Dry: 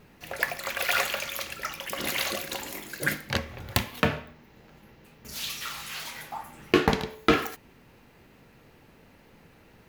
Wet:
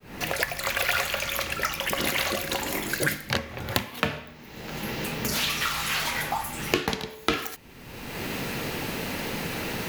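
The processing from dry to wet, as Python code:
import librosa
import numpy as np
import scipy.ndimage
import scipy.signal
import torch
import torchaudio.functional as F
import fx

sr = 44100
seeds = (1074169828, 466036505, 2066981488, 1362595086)

y = fx.fade_in_head(x, sr, length_s=1.03)
y = fx.band_squash(y, sr, depth_pct=100)
y = F.gain(torch.from_numpy(y), 3.5).numpy()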